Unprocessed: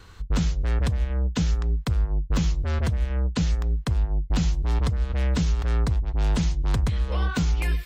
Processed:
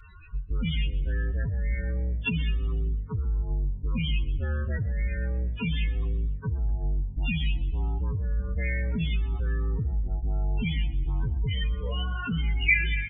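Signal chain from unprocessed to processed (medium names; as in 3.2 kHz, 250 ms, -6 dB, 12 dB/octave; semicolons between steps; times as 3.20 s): steep low-pass 4 kHz 72 dB/octave; peaking EQ 2.3 kHz +6.5 dB 2.8 oct; loudest bins only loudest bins 16; peak limiter -21.5 dBFS, peak gain reduction 7 dB; time stretch by phase-locked vocoder 1.6×; resonant high shelf 1.8 kHz +9.5 dB, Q 3; frequency-shifting echo 120 ms, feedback 47%, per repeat +47 Hz, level -19 dB; on a send at -23 dB: reverberation RT60 0.35 s, pre-delay 4 ms; on the sum: speed mistake 25 fps video run at 24 fps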